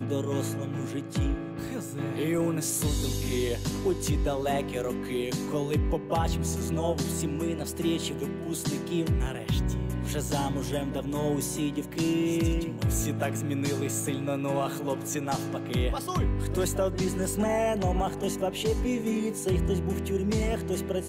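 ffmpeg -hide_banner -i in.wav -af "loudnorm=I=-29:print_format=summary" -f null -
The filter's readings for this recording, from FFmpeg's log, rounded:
Input Integrated:    -29.2 LUFS
Input True Peak:     -17.2 dBTP
Input LRA:             1.9 LU
Input Threshold:     -39.2 LUFS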